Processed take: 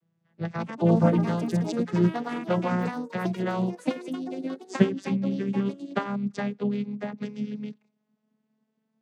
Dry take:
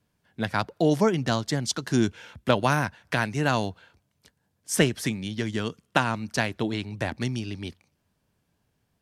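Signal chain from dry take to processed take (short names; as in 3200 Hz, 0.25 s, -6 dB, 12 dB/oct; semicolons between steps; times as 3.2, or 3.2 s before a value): vocoder on a gliding note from E3, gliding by +5 st; echoes that change speed 0.278 s, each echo +5 st, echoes 3, each echo -6 dB; harmoniser -7 st -17 dB, +3 st -15 dB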